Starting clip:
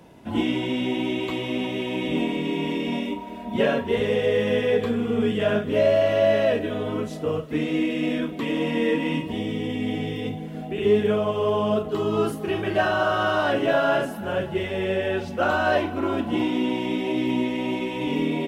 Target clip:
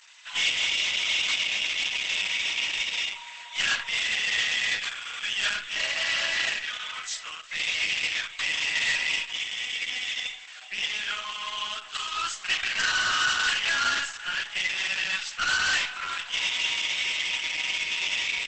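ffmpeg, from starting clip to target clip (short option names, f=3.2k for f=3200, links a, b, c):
-filter_complex "[0:a]highpass=f=1.4k:w=0.5412,highpass=f=1.4k:w=1.3066,aeval=exprs='(tanh(39.8*val(0)+0.5)-tanh(0.5))/39.8':c=same,asplit=2[a][b];[b]adynamicsmooth=sensitivity=2.5:basefreq=3.9k,volume=-1dB[c];[a][c]amix=inputs=2:normalize=0,crystalizer=i=7.5:c=0" -ar 48000 -c:a libopus -b:a 10k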